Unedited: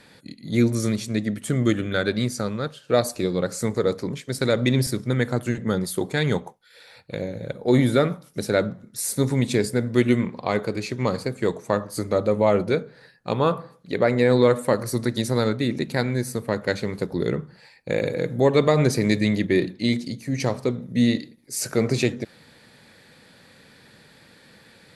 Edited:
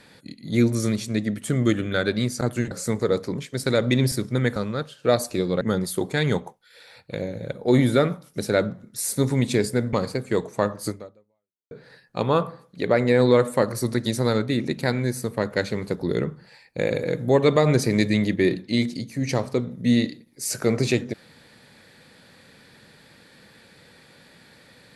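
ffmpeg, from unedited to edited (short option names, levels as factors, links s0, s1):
-filter_complex "[0:a]asplit=7[s0][s1][s2][s3][s4][s5][s6];[s0]atrim=end=2.412[s7];[s1]atrim=start=5.308:end=5.612[s8];[s2]atrim=start=3.458:end=5.312[s9];[s3]atrim=start=2.408:end=3.462[s10];[s4]atrim=start=5.608:end=9.932[s11];[s5]atrim=start=11.038:end=12.82,asetpts=PTS-STARTPTS,afade=t=out:st=0.962:d=0.82:c=exp[s12];[s6]atrim=start=12.82,asetpts=PTS-STARTPTS,afade=t=in:d=0.004:c=hsin[s13];[s7][s8]acrossfade=d=0.004:c1=hsin:c2=hsin[s14];[s14][s9]acrossfade=d=0.004:c1=hsin:c2=hsin[s15];[s15][s10]acrossfade=d=0.004:c1=hsin:c2=hsin[s16];[s16][s11]acrossfade=d=0.004:c1=hsin:c2=hsin[s17];[s12][s13]concat=n=2:v=0:a=1[s18];[s17][s18]acrossfade=d=0.004:c1=hsin:c2=hsin"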